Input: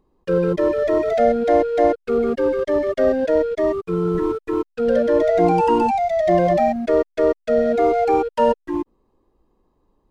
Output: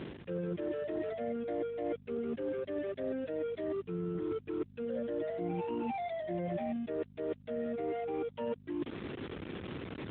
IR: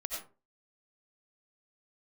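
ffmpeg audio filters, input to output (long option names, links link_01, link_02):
-af "aeval=exprs='val(0)+0.5*0.0355*sgn(val(0))':channel_layout=same,equalizer=frequency=860:width=1:gain=-11,areverse,acompressor=threshold=-35dB:ratio=5,areverse,aeval=exprs='val(0)+0.00355*(sin(2*PI*50*n/s)+sin(2*PI*2*50*n/s)/2+sin(2*PI*3*50*n/s)/3+sin(2*PI*4*50*n/s)/4+sin(2*PI*5*50*n/s)/5)':channel_layout=same,acompressor=mode=upward:threshold=-42dB:ratio=2.5" -ar 8000 -c:a libopencore_amrnb -b:a 12200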